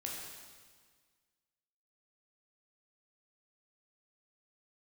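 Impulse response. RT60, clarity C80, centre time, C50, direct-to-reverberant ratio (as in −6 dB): 1.6 s, 2.5 dB, 86 ms, 0.5 dB, −3.0 dB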